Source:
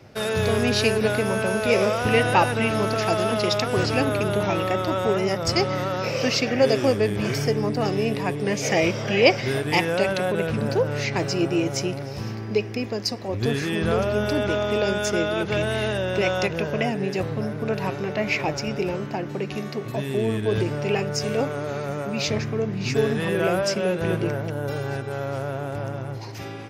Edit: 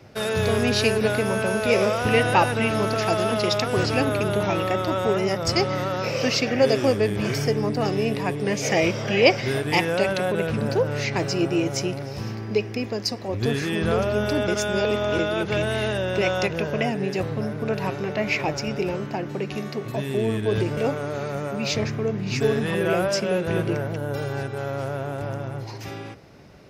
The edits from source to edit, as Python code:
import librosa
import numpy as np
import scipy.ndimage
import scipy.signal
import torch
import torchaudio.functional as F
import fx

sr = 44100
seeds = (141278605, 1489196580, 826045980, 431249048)

y = fx.edit(x, sr, fx.reverse_span(start_s=14.48, length_s=0.71),
    fx.cut(start_s=20.77, length_s=0.54), tone=tone)